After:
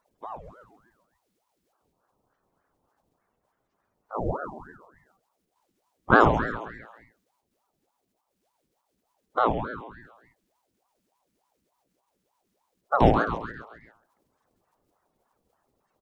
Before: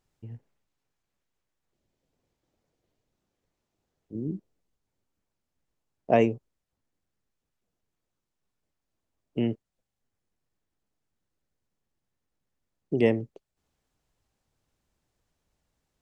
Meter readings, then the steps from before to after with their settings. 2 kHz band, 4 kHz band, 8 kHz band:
+12.5 dB, +4.0 dB, can't be measured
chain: spectral magnitudes quantised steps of 30 dB
echo with shifted repeats 134 ms, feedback 49%, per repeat +130 Hz, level −8 dB
ring modulator whose carrier an LFO sweeps 590 Hz, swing 70%, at 3.4 Hz
level +7 dB

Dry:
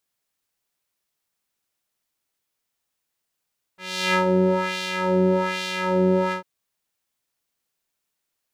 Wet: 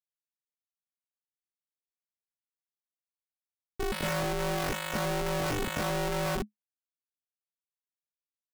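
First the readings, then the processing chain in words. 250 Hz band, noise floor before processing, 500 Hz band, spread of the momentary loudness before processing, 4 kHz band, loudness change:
−12.0 dB, −80 dBFS, −10.0 dB, 8 LU, −7.5 dB, −9.5 dB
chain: spectral peaks only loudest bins 64
comparator with hysteresis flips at −35 dBFS
ring modulation 210 Hz

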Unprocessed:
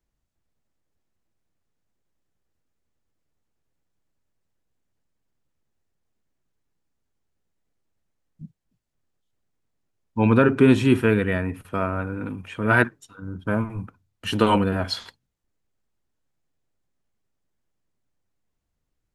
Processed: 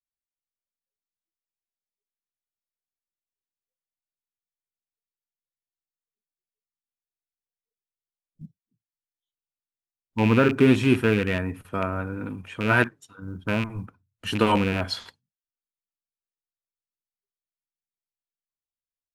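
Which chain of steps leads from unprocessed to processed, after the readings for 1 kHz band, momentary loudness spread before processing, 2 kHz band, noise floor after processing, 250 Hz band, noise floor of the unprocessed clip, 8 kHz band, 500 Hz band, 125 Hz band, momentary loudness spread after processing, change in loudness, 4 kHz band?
−2.0 dB, 17 LU, −1.0 dB, below −85 dBFS, −2.0 dB, −78 dBFS, can't be measured, −2.0 dB, −2.0 dB, 17 LU, −2.0 dB, −0.5 dB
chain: loose part that buzzes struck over −23 dBFS, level −17 dBFS
noise reduction from a noise print of the clip's start 28 dB
floating-point word with a short mantissa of 6 bits
level −2 dB

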